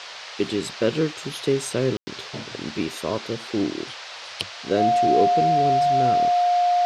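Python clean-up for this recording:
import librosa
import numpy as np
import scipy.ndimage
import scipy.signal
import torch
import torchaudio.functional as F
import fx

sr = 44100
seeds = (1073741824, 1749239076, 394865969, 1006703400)

y = fx.notch(x, sr, hz=710.0, q=30.0)
y = fx.fix_ambience(y, sr, seeds[0], print_start_s=3.89, print_end_s=4.39, start_s=1.97, end_s=2.07)
y = fx.noise_reduce(y, sr, print_start_s=3.89, print_end_s=4.39, reduce_db=30.0)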